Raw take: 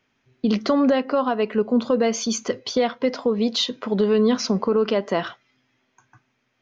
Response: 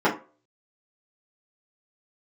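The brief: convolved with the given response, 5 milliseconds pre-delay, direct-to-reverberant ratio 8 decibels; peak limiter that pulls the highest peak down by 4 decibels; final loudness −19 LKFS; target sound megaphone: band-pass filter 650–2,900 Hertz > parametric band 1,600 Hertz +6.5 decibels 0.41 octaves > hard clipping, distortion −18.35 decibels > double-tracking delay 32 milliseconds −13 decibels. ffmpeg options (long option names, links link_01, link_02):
-filter_complex "[0:a]alimiter=limit=-13.5dB:level=0:latency=1,asplit=2[link_01][link_02];[1:a]atrim=start_sample=2205,adelay=5[link_03];[link_02][link_03]afir=irnorm=-1:irlink=0,volume=-26.5dB[link_04];[link_01][link_04]amix=inputs=2:normalize=0,highpass=650,lowpass=2900,equalizer=frequency=1600:width_type=o:width=0.41:gain=6.5,asoftclip=type=hard:threshold=-20.5dB,asplit=2[link_05][link_06];[link_06]adelay=32,volume=-13dB[link_07];[link_05][link_07]amix=inputs=2:normalize=0,volume=10.5dB"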